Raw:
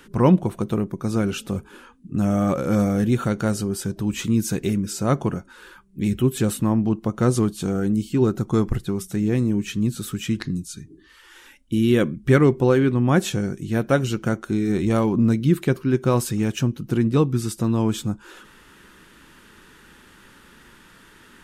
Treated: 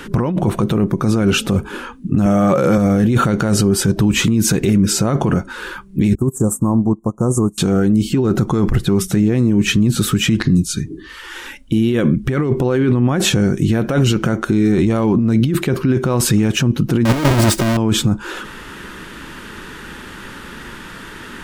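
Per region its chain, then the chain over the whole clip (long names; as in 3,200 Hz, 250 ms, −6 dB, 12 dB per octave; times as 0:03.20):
0:02.26–0:02.78: high-pass filter 130 Hz + parametric band 260 Hz −13.5 dB 0.22 octaves
0:06.15–0:07.58: elliptic band-stop filter 1,100–7,300 Hz, stop band 50 dB + parametric band 6,300 Hz +10 dB 2.8 octaves + expander for the loud parts 2.5 to 1, over −30 dBFS
0:17.05–0:17.77: each half-wave held at its own peak + comb filter 3.2 ms, depth 44%
whole clip: high-shelf EQ 5,600 Hz −6.5 dB; compressor whose output falls as the input rises −24 dBFS, ratio −1; boost into a limiter +17.5 dB; level −4.5 dB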